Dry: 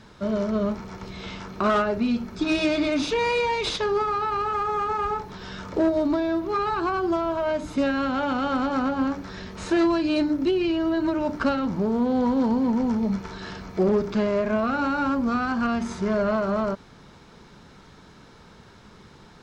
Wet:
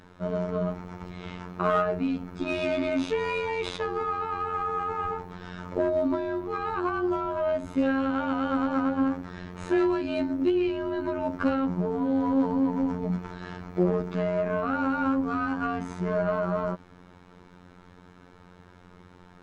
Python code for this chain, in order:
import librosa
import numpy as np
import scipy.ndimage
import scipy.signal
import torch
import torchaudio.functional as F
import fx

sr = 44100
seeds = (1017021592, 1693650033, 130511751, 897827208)

y = fx.peak_eq(x, sr, hz=4800.0, db=-9.0, octaves=1.2)
y = fx.robotise(y, sr, hz=89.4)
y = fx.high_shelf(y, sr, hz=6600.0, db=-5.5)